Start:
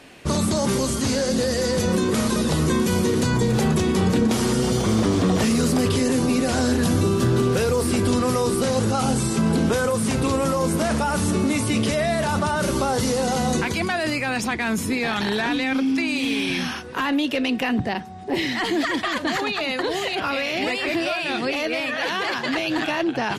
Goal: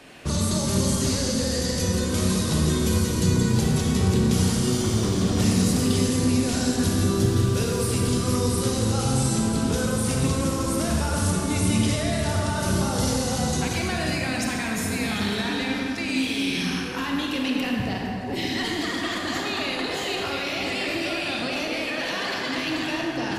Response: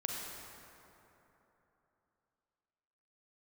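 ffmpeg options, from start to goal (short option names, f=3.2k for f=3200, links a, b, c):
-filter_complex "[0:a]acrossover=split=190|3000[a][b][c];[b]acompressor=threshold=-34dB:ratio=2.5[d];[a][d][c]amix=inputs=3:normalize=0[e];[1:a]atrim=start_sample=2205[f];[e][f]afir=irnorm=-1:irlink=0"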